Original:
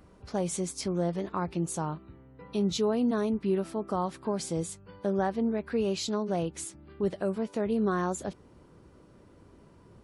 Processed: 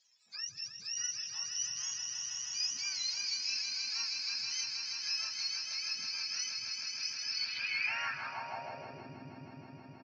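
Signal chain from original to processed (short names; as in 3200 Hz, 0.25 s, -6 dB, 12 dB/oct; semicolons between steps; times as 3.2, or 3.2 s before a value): spectrum mirrored in octaves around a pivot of 1000 Hz; swelling echo 0.159 s, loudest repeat 5, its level -7 dB; downsampling 16000 Hz; on a send: delay with a stepping band-pass 0.213 s, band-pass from 330 Hz, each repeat 0.7 oct, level -9 dB; on the sum: band-pass sweep 5900 Hz -> 300 Hz, 7.23–9.16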